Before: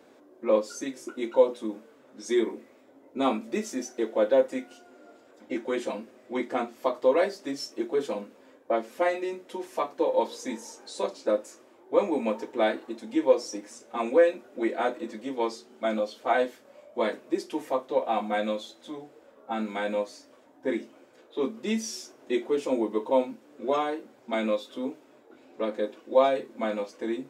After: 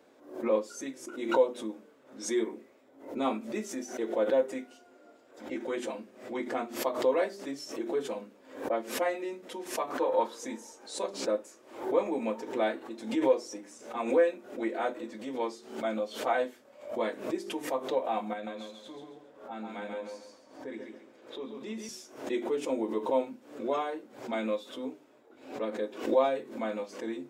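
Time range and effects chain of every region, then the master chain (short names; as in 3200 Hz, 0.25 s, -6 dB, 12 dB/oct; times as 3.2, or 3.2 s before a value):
9.9–10.39 bell 1300 Hz +10.5 dB 0.84 oct + notches 60/120/180/240/300/360/420/480 Hz
18.33–21.89 high shelf 6600 Hz -5 dB + compressor 2:1, threshold -36 dBFS + feedback echo 0.137 s, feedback 33%, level -4 dB
whole clip: notches 50/100/150/200/250/300/350/400 Hz; dynamic EQ 4800 Hz, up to -4 dB, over -51 dBFS, Q 1.8; backwards sustainer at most 110 dB/s; gain -4.5 dB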